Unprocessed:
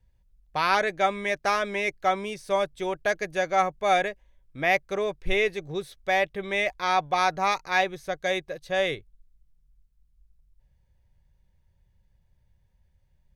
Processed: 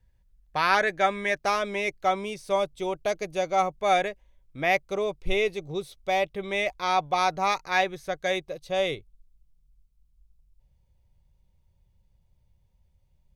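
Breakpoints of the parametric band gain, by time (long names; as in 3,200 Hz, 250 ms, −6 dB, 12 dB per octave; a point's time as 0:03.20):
parametric band 1,700 Hz 0.35 octaves
+4 dB
from 0:01.38 −7.5 dB
from 0:02.60 −14.5 dB
from 0:03.78 −4.5 dB
from 0:04.82 −14.5 dB
from 0:06.28 −8.5 dB
from 0:07.50 −1.5 dB
from 0:08.36 −12 dB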